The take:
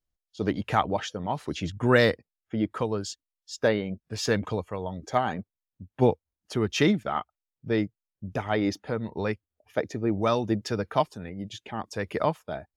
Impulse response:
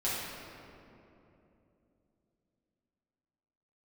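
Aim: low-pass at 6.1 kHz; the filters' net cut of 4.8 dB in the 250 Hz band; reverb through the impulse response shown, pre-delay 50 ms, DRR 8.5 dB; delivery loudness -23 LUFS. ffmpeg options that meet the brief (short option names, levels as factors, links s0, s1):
-filter_complex "[0:a]lowpass=6100,equalizer=f=250:t=o:g=-6.5,asplit=2[s0][s1];[1:a]atrim=start_sample=2205,adelay=50[s2];[s1][s2]afir=irnorm=-1:irlink=0,volume=0.158[s3];[s0][s3]amix=inputs=2:normalize=0,volume=2.11"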